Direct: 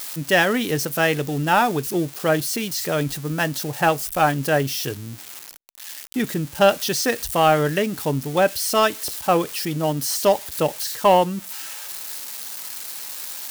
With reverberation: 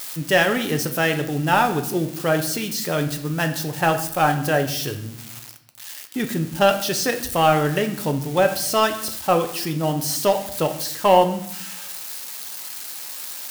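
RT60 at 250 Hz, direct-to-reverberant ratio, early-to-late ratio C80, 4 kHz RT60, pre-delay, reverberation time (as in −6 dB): 1.2 s, 6.0 dB, 13.5 dB, 0.65 s, 6 ms, 0.70 s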